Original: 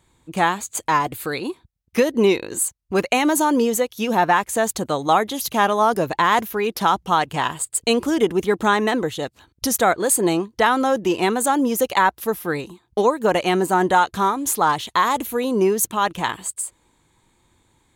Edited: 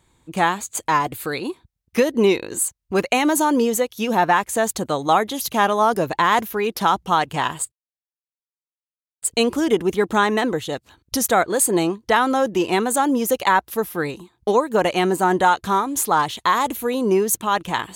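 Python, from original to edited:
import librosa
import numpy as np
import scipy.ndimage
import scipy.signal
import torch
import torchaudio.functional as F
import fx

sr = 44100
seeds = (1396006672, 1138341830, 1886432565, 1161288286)

y = fx.edit(x, sr, fx.insert_silence(at_s=7.72, length_s=1.5), tone=tone)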